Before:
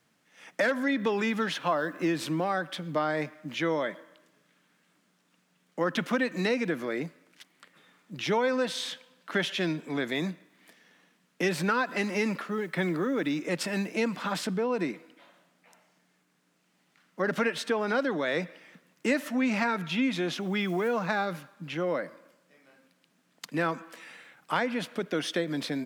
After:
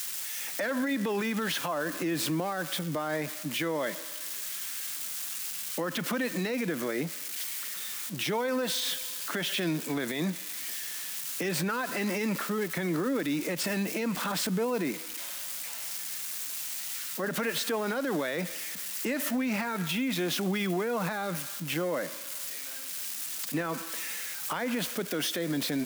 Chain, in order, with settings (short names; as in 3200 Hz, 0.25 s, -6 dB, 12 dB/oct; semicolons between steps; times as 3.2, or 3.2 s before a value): switching spikes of -30.5 dBFS; limiter -26 dBFS, peak gain reduction 11.5 dB; gain +3.5 dB